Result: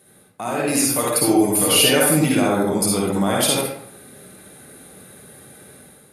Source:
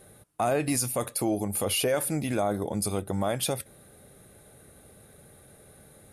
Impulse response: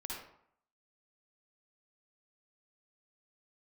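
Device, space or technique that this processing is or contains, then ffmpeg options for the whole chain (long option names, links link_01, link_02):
far laptop microphone: -filter_complex "[0:a]equalizer=frequency=650:width=0.71:gain=-6,asettb=1/sr,asplit=3[link_01][link_02][link_03];[link_01]atrim=end=0.894[link_04];[link_02]atrim=start=0.89:end=2.36,asetpts=PTS-STARTPTS,afade=type=in:duration=0.004:curve=qsin,afade=type=out:start_time=1.466:duration=0.004:curve=qsin,aecho=1:1:6.7:0.65,atrim=end_sample=64827[link_05];[link_03]atrim=start=2.356[link_06];[link_04][link_05]acrossfade=duration=0.004:curve1=hsin:curve2=qsin[link_07];[link_07][link_06]acrossfade=duration=0.004:curve1=qsin:curve2=hsin[link_08];[1:a]atrim=start_sample=2205[link_09];[link_08][link_09]afir=irnorm=-1:irlink=0,highpass=160,dynaudnorm=framelen=520:gausssize=3:maxgain=8dB,volume=6.5dB"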